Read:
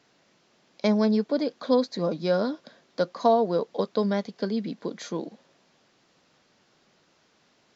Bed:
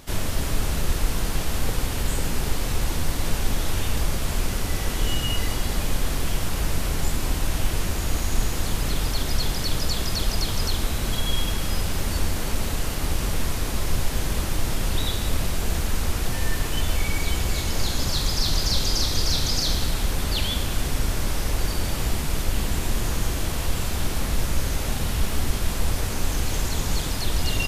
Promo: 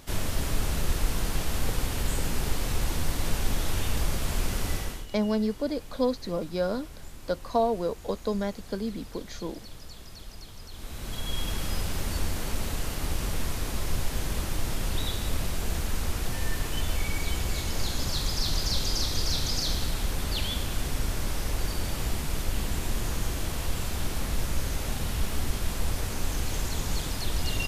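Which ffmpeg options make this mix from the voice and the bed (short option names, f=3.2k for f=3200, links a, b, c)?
-filter_complex "[0:a]adelay=4300,volume=-4dB[a];[1:a]volume=11.5dB,afade=t=out:st=4.71:d=0.35:silence=0.149624,afade=t=in:st=10.7:d=0.88:silence=0.177828[b];[a][b]amix=inputs=2:normalize=0"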